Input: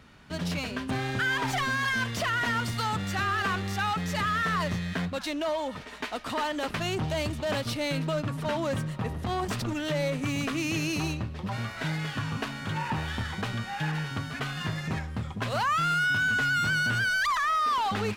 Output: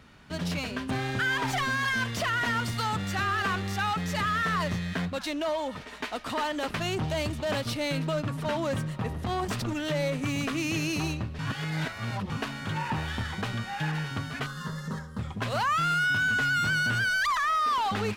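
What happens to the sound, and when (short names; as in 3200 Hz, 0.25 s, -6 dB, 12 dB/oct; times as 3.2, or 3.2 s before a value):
11.39–12.3 reverse
14.46–15.19 fixed phaser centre 480 Hz, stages 8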